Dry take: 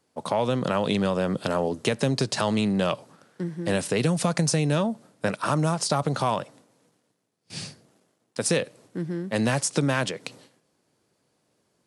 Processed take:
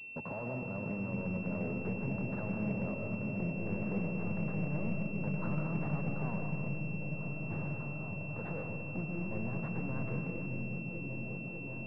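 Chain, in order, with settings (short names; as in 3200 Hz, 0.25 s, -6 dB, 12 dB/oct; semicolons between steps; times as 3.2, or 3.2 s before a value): low shelf 370 Hz +10.5 dB; compressor 8:1, threshold -36 dBFS, peak gain reduction 23.5 dB; hard clip -36.5 dBFS, distortion -10 dB; repeats that get brighter 0.594 s, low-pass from 200 Hz, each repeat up 1 oct, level 0 dB; on a send at -3 dB: reverb RT60 1.3 s, pre-delay 85 ms; on the sum: pulse-width modulation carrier 2700 Hz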